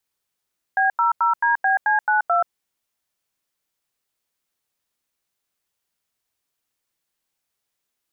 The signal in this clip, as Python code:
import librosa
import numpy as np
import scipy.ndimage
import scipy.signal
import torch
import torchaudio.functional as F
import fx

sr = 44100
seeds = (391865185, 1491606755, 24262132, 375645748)

y = fx.dtmf(sr, digits='B00DBC92', tone_ms=130, gap_ms=88, level_db=-18.0)